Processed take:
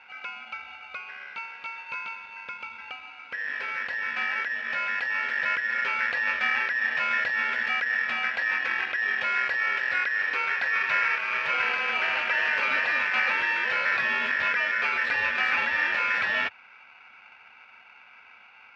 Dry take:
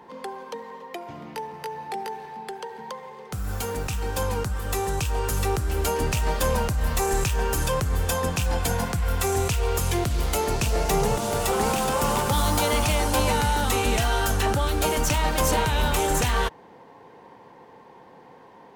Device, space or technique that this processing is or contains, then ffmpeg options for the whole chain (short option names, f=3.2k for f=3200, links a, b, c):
ring modulator pedal into a guitar cabinet: -af "aeval=exprs='val(0)*sgn(sin(2*PI*1800*n/s))':c=same,highpass=100,equalizer=f=140:t=q:w=4:g=-6,equalizer=f=330:t=q:w=4:g=-6,equalizer=f=520:t=q:w=4:g=8,equalizer=f=1.5k:t=q:w=4:g=9,equalizer=f=2.4k:t=q:w=4:g=9,lowpass=f=3.6k:w=0.5412,lowpass=f=3.6k:w=1.3066,volume=-7.5dB"